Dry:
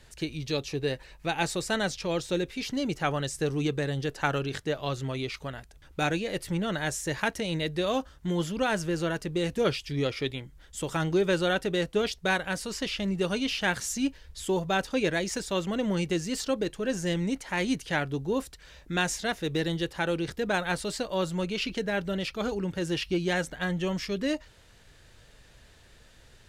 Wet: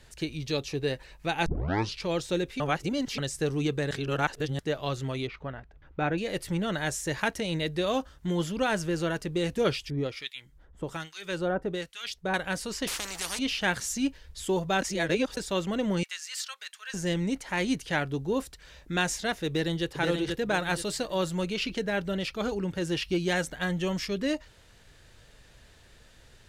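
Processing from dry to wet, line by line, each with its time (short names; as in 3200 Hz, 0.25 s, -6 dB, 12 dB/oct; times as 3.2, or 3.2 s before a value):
1.46 tape start 0.59 s
2.6–3.18 reverse
3.91–4.59 reverse
5.27–6.18 LPF 1900 Hz
9.9–12.34 harmonic tremolo 1.2 Hz, depth 100%, crossover 1400 Hz
12.87–13.39 spectral compressor 10:1
14.82–15.37 reverse
16.03–16.94 HPF 1300 Hz 24 dB/oct
19.47–19.9 echo throw 0.48 s, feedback 30%, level -3 dB
20.62–21.54 high shelf 6000 Hz +4.5 dB
23.08–24.08 high shelf 4900 Hz +4 dB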